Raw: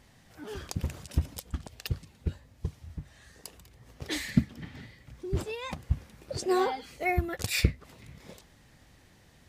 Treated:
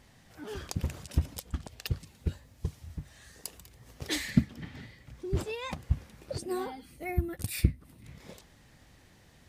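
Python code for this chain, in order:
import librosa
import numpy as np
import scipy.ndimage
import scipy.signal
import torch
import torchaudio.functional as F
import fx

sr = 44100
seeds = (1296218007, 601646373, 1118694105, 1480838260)

y = fx.high_shelf(x, sr, hz=5200.0, db=6.5, at=(2.0, 4.16))
y = fx.spec_box(y, sr, start_s=6.38, length_s=1.67, low_hz=360.0, high_hz=8100.0, gain_db=-10)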